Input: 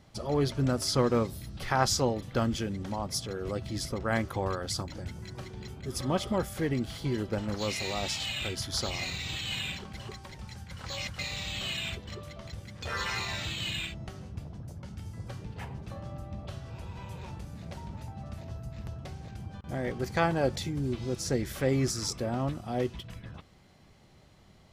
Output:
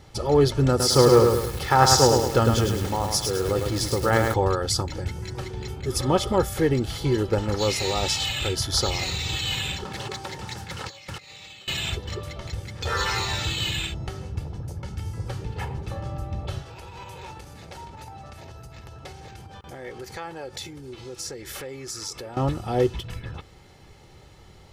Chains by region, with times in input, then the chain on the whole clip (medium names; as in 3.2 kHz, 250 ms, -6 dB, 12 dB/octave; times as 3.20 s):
0.69–4.34 s: high-pass 56 Hz + bit-crushed delay 105 ms, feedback 55%, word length 7-bit, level -3.5 dB
9.85–11.68 s: high-pass 150 Hz + compressor with a negative ratio -44 dBFS, ratio -0.5 + loudspeaker Doppler distortion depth 0.34 ms
16.62–22.37 s: compression, threshold -38 dBFS + bass shelf 270 Hz -11.5 dB
whole clip: dynamic bell 2.3 kHz, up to -5 dB, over -49 dBFS, Q 2.1; comb 2.3 ms, depth 48%; trim +8 dB